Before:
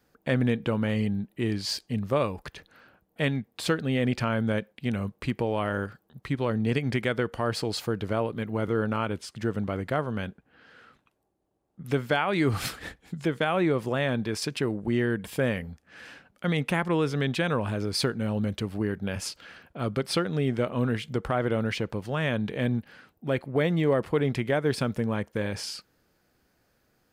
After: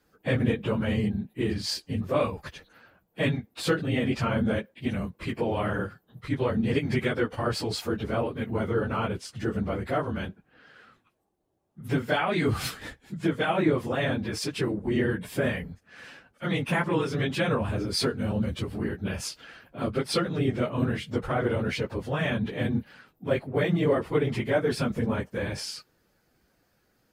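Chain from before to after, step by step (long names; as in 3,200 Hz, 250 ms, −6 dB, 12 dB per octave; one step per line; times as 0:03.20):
random phases in long frames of 50 ms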